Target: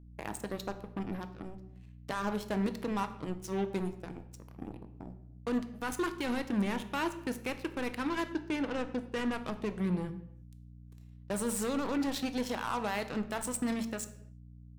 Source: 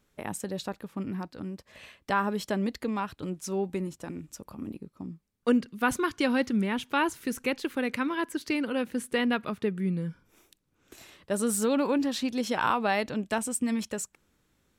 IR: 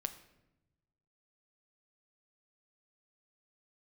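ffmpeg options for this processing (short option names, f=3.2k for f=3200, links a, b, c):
-filter_complex "[0:a]asettb=1/sr,asplit=3[a][b][c];[a]atrim=end=8.284[d];[b]atrim=start=8.28:end=9.38,asetpts=PTS-STARTPTS,afade=t=in:d=0.004:c=qsin,afade=t=out:st=1.096:d=0.004:c=qsin,aemphasis=mode=reproduction:type=75kf[e];[c]atrim=start=9.376[f];[d][e]acrossfade=d=0.004:c1=hsin:c2=qsin[g];[g][f]acrossfade=d=0.004:c1=qsin:c2=hsin,alimiter=limit=-22dB:level=0:latency=1:release=55,aeval=exprs='0.0794*(cos(1*acos(clip(val(0)/0.0794,-1,1)))-cos(1*PI/2))+0.00708*(cos(3*acos(clip(val(0)/0.0794,-1,1)))-cos(3*PI/2))+0.00794*(cos(7*acos(clip(val(0)/0.0794,-1,1)))-cos(7*PI/2))':c=same,aeval=exprs='val(0)+0.00316*(sin(2*PI*60*n/s)+sin(2*PI*2*60*n/s)/2+sin(2*PI*3*60*n/s)/3+sin(2*PI*4*60*n/s)/4+sin(2*PI*5*60*n/s)/5)':c=same[h];[1:a]atrim=start_sample=2205,afade=t=out:st=0.44:d=0.01,atrim=end_sample=19845,asetrate=48510,aresample=44100[i];[h][i]afir=irnorm=-1:irlink=0"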